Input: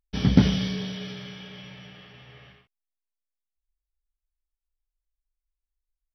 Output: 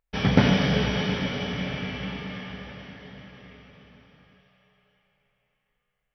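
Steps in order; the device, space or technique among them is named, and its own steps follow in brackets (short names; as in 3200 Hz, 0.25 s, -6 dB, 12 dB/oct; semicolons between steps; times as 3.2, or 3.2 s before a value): band shelf 1100 Hz +9.5 dB 2.9 oct; cathedral (reverb RT60 5.7 s, pre-delay 13 ms, DRR 0 dB); gain -2 dB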